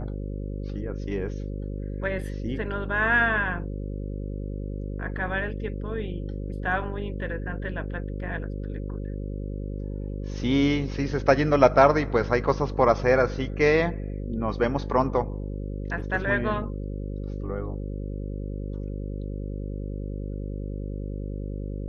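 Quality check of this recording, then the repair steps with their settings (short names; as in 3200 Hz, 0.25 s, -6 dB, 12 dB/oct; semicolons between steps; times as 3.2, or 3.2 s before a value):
buzz 50 Hz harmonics 11 -32 dBFS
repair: de-hum 50 Hz, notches 11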